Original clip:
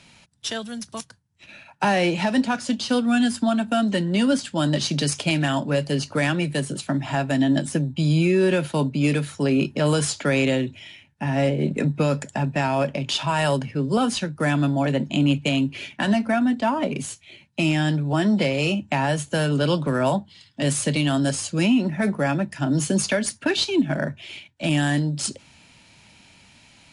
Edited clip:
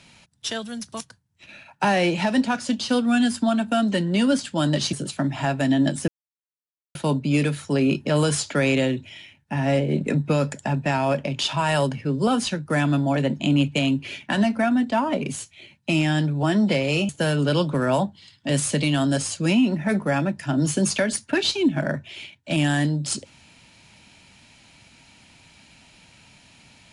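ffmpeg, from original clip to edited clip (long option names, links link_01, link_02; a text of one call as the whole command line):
ffmpeg -i in.wav -filter_complex "[0:a]asplit=5[link_01][link_02][link_03][link_04][link_05];[link_01]atrim=end=4.932[link_06];[link_02]atrim=start=6.628:end=7.78,asetpts=PTS-STARTPTS,afade=type=out:start_time=1.148:duration=0.004:curve=hsin[link_07];[link_03]atrim=start=7.78:end=8.65,asetpts=PTS-STARTPTS,volume=0[link_08];[link_04]atrim=start=8.65:end=18.792,asetpts=PTS-STARTPTS,afade=type=in:duration=0.004:curve=hsin[link_09];[link_05]atrim=start=19.218[link_10];[link_07][link_08][link_09]concat=n=3:v=0:a=1[link_11];[link_06][link_11]acrossfade=duration=0.004:curve1=hsin:curve2=hsin[link_12];[link_12][link_10]acrossfade=duration=0.004:curve1=hsin:curve2=hsin" out.wav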